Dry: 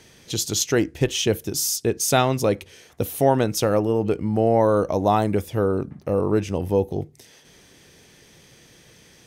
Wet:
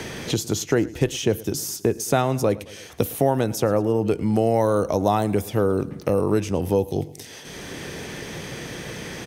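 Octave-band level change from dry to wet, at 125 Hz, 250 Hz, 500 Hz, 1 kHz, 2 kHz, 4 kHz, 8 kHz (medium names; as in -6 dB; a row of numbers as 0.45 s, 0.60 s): +0.5 dB, +0.5 dB, -0.5 dB, -1.5 dB, -0.5 dB, -4.0 dB, -4.5 dB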